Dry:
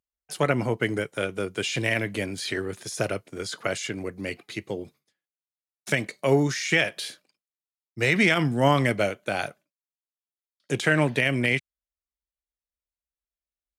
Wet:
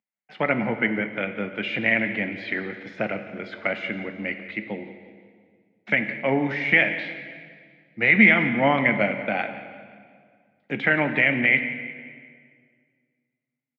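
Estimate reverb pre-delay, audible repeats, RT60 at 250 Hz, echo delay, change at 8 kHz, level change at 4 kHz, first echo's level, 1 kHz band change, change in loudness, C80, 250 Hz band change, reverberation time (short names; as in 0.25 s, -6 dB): 6 ms, 3, 2.2 s, 0.175 s, under -30 dB, -4.5 dB, -16.5 dB, +1.5 dB, +3.0 dB, 10.0 dB, +2.0 dB, 1.9 s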